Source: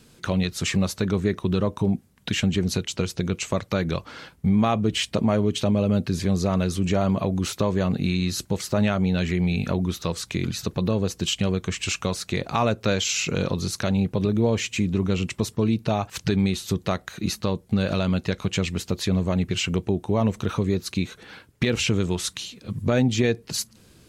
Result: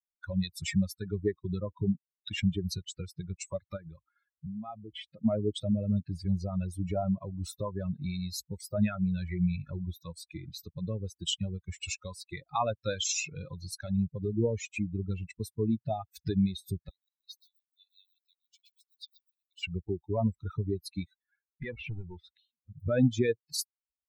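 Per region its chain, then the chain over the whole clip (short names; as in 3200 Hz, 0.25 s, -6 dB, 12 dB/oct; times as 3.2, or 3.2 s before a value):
3.76–5.25 LPF 3300 Hz 6 dB/oct + compressor 2:1, threshold -26 dBFS
16.89–19.63 G.711 law mismatch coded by A + ladder high-pass 2600 Hz, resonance 25% + lo-fi delay 0.127 s, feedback 35%, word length 8-bit, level -5 dB
21.23–22.74 LPF 2800 Hz + hard clip -20 dBFS
whole clip: per-bin expansion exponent 3; dynamic EQ 1500 Hz, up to -4 dB, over -48 dBFS, Q 1.2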